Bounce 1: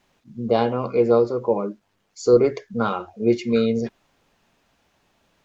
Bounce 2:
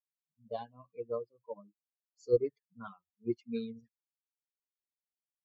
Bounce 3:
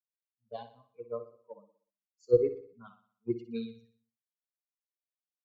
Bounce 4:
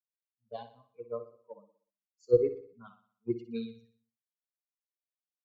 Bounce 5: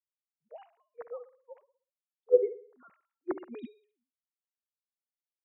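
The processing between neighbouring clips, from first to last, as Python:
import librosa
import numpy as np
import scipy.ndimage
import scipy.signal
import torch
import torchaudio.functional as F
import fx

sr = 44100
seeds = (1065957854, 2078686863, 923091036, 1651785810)

y1 = fx.bin_expand(x, sr, power=3.0)
y1 = fx.peak_eq(y1, sr, hz=2000.0, db=-8.5, octaves=0.41)
y1 = fx.upward_expand(y1, sr, threshold_db=-43.0, expansion=1.5)
y1 = y1 * librosa.db_to_amplitude(-8.5)
y2 = fx.bass_treble(y1, sr, bass_db=1, treble_db=-4)
y2 = fx.echo_feedback(y2, sr, ms=61, feedback_pct=57, wet_db=-11)
y2 = fx.band_widen(y2, sr, depth_pct=70)
y2 = y2 * librosa.db_to_amplitude(-2.5)
y3 = y2
y4 = fx.sine_speech(y3, sr)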